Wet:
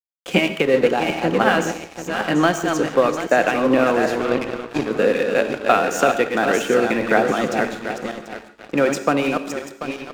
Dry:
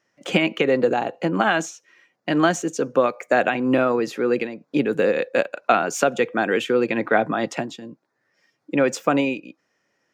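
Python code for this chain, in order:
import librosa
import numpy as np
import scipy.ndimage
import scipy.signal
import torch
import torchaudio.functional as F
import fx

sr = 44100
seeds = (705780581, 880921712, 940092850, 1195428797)

y = fx.reverse_delay_fb(x, sr, ms=369, feedback_pct=57, wet_db=-5.0)
y = fx.power_curve(y, sr, exponent=1.4, at=(4.19, 4.91))
y = np.sign(y) * np.maximum(np.abs(y) - 10.0 ** (-33.5 / 20.0), 0.0)
y = fx.rev_gated(y, sr, seeds[0], gate_ms=190, shape='flat', drr_db=10.0)
y = y * 10.0 ** (2.0 / 20.0)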